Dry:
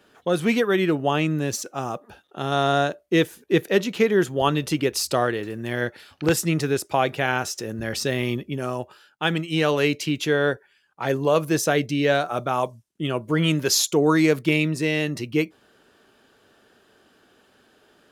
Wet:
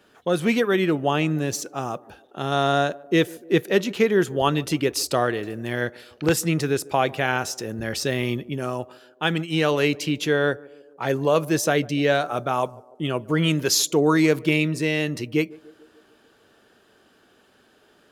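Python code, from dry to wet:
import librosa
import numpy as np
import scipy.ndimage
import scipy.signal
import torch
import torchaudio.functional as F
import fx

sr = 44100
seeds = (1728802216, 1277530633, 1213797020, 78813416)

y = fx.echo_banded(x, sr, ms=147, feedback_pct=64, hz=450.0, wet_db=-21.0)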